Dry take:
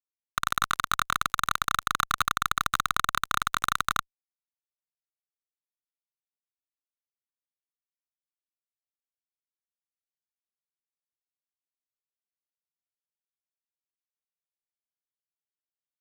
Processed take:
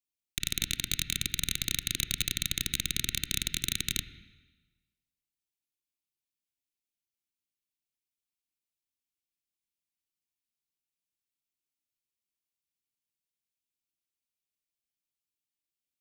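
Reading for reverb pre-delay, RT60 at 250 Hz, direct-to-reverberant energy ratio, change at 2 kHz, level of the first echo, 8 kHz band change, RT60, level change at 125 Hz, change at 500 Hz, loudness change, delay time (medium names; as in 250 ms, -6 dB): 23 ms, 1.3 s, 10.5 dB, -8.0 dB, no echo, +3.0 dB, 1.3 s, +3.5 dB, -8.0 dB, -3.0 dB, no echo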